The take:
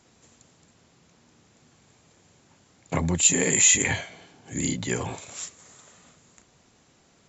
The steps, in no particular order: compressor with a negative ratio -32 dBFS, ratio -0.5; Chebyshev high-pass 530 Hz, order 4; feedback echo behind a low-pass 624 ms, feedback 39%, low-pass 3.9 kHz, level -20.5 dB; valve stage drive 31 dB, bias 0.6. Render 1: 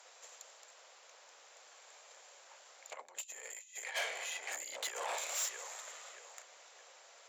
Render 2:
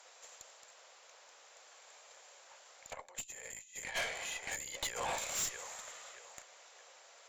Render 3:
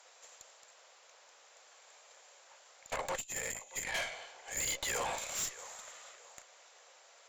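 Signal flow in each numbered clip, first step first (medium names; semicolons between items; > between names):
feedback echo behind a low-pass > compressor with a negative ratio > valve stage > Chebyshev high-pass; feedback echo behind a low-pass > compressor with a negative ratio > Chebyshev high-pass > valve stage; Chebyshev high-pass > compressor with a negative ratio > feedback echo behind a low-pass > valve stage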